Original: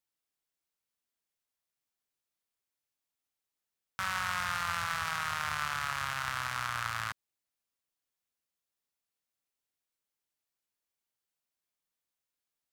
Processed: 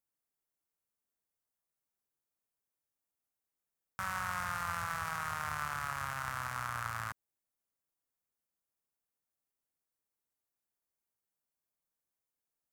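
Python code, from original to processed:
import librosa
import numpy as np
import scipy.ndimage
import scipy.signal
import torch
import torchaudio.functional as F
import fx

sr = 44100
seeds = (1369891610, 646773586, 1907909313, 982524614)

y = fx.peak_eq(x, sr, hz=3500.0, db=-11.5, octaves=1.7)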